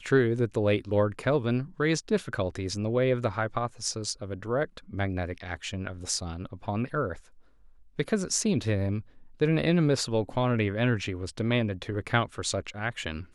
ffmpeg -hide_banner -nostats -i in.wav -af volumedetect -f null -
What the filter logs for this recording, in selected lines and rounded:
mean_volume: -28.5 dB
max_volume: -8.8 dB